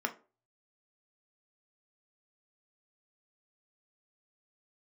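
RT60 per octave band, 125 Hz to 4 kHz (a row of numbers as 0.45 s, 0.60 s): 0.65 s, 0.35 s, 0.40 s, 0.35 s, 0.25 s, 0.20 s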